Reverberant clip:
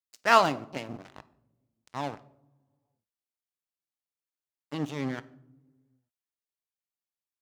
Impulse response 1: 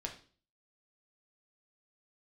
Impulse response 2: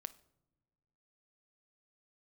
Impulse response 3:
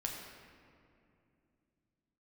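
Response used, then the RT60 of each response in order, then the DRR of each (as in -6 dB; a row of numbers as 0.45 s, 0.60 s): 2; 0.40 s, no single decay rate, 2.6 s; 1.0 dB, 14.0 dB, -1.0 dB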